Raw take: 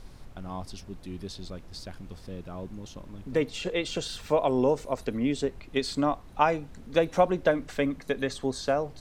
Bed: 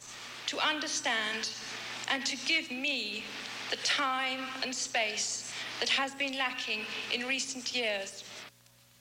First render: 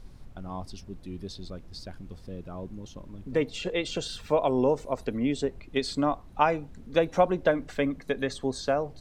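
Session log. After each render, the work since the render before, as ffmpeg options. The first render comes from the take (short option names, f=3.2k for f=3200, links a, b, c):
-af "afftdn=nr=6:nf=-48"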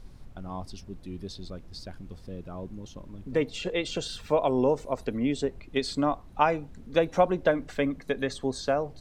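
-af anull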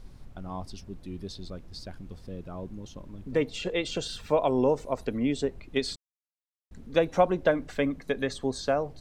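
-filter_complex "[0:a]asplit=3[a][b][c];[a]atrim=end=5.96,asetpts=PTS-STARTPTS,afade=t=out:st=5.956:d=0.004:c=hsin[d];[b]atrim=start=5.96:end=6.71,asetpts=PTS-STARTPTS,volume=0[e];[c]atrim=start=6.71,asetpts=PTS-STARTPTS,afade=t=in:d=0.004:c=hsin[f];[d][e][f]concat=n=3:v=0:a=1"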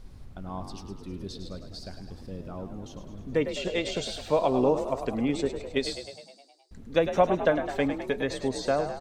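-filter_complex "[0:a]asplit=9[a][b][c][d][e][f][g][h][i];[b]adelay=104,afreqshift=49,volume=-9.5dB[j];[c]adelay=208,afreqshift=98,volume=-13.7dB[k];[d]adelay=312,afreqshift=147,volume=-17.8dB[l];[e]adelay=416,afreqshift=196,volume=-22dB[m];[f]adelay=520,afreqshift=245,volume=-26.1dB[n];[g]adelay=624,afreqshift=294,volume=-30.3dB[o];[h]adelay=728,afreqshift=343,volume=-34.4dB[p];[i]adelay=832,afreqshift=392,volume=-38.6dB[q];[a][j][k][l][m][n][o][p][q]amix=inputs=9:normalize=0"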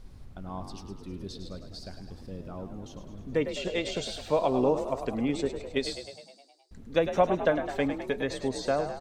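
-af "volume=-1.5dB"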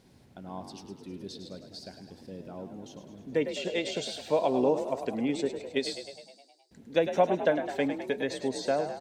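-af "highpass=170,equalizer=f=1.2k:t=o:w=0.27:g=-11"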